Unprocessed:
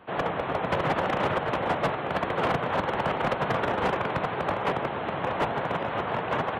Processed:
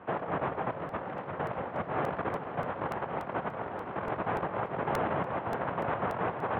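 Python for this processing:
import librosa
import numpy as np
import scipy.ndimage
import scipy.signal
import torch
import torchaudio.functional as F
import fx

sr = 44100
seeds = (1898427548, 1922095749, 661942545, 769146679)

y = scipy.signal.sosfilt(scipy.signal.butter(2, 1800.0, 'lowpass', fs=sr, output='sos'), x)
y = fx.over_compress(y, sr, threshold_db=-32.0, ratio=-0.5)
y = scipy.signal.sosfilt(scipy.signal.butter(4, 54.0, 'highpass', fs=sr, output='sos'), y)
y = fx.echo_feedback(y, sr, ms=511, feedback_pct=57, wet_db=-11.0)
y = fx.buffer_crackle(y, sr, first_s=0.89, period_s=0.29, block=64, kind='repeat')
y = F.gain(torch.from_numpy(y), -1.5).numpy()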